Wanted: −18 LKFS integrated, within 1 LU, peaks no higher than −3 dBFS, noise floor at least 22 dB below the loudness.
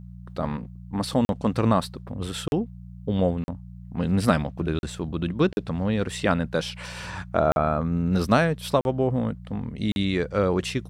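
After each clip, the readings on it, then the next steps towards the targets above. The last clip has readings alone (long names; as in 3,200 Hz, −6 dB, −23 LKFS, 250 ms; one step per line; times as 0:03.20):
number of dropouts 8; longest dropout 41 ms; mains hum 60 Hz; hum harmonics up to 180 Hz; level of the hum −38 dBFS; integrated loudness −25.5 LKFS; sample peak −6.0 dBFS; target loudness −18.0 LKFS
→ repair the gap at 0:01.25/0:02.48/0:03.44/0:04.79/0:05.53/0:07.52/0:08.81/0:09.92, 41 ms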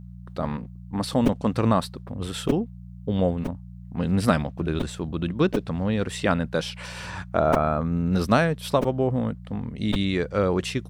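number of dropouts 0; mains hum 60 Hz; hum harmonics up to 180 Hz; level of the hum −38 dBFS
→ hum removal 60 Hz, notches 3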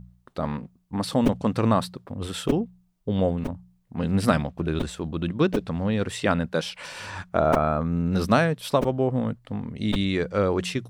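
mains hum none found; integrated loudness −25.5 LKFS; sample peak −6.5 dBFS; target loudness −18.0 LKFS
→ level +7.5 dB
brickwall limiter −3 dBFS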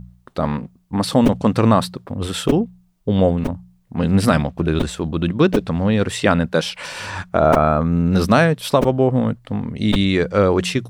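integrated loudness −18.5 LKFS; sample peak −3.0 dBFS; background noise floor −56 dBFS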